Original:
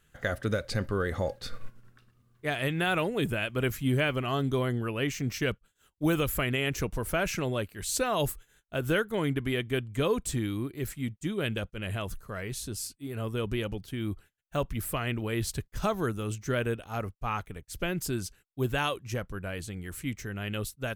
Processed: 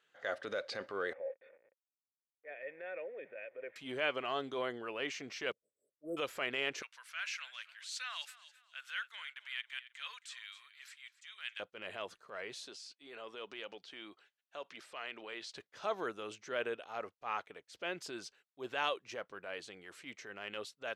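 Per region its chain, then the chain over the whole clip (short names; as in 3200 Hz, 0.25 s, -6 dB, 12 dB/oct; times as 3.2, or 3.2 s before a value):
1.13–3.76 level-crossing sampler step -40 dBFS + vocal tract filter e + small resonant body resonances 1500/2200 Hz, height 8 dB, ringing for 20 ms
5.52–6.17 brick-wall FIR band-stop 670–7600 Hz + auto swell 0.117 s
6.82–11.6 HPF 1500 Hz 24 dB/oct + feedback echo 0.267 s, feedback 36%, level -18.5 dB
12.67–15.56 tilt +2 dB/oct + compressor 3:1, threshold -34 dBFS + BPF 140–6400 Hz
whole clip: Chebyshev band-pass 510–4400 Hz, order 2; transient shaper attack -6 dB, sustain +1 dB; gain -3 dB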